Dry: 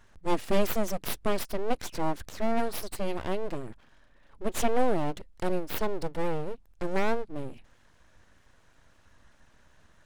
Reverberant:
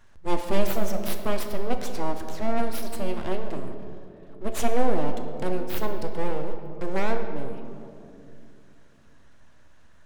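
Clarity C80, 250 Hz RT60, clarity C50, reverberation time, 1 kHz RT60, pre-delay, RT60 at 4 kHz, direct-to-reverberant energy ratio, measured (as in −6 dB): 8.0 dB, 3.8 s, 7.0 dB, 2.6 s, 2.2 s, 4 ms, 1.4 s, 5.0 dB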